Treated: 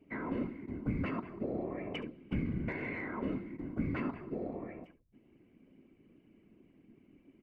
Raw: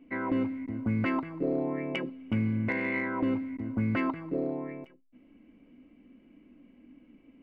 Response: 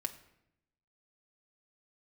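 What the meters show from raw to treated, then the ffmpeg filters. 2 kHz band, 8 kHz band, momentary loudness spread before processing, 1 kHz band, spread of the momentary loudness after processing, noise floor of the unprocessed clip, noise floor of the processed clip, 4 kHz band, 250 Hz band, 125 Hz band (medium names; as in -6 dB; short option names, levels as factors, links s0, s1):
-8.5 dB, no reading, 6 LU, -8.0 dB, 6 LU, -60 dBFS, -67 dBFS, -6.0 dB, -7.5 dB, -5.5 dB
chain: -filter_complex "[0:a]aecho=1:1:70:0.158,afftfilt=real='hypot(re,im)*cos(2*PI*random(0))':imag='hypot(re,im)*sin(2*PI*random(1))':win_size=512:overlap=0.75,acrossover=split=340[s0][s1];[s1]acompressor=threshold=0.0112:ratio=2.5[s2];[s0][s2]amix=inputs=2:normalize=0"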